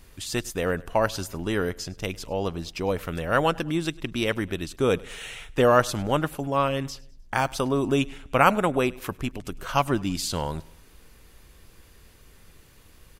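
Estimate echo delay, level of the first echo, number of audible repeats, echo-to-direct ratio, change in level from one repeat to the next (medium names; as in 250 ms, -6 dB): 102 ms, -23.0 dB, 2, -22.0 dB, -6.5 dB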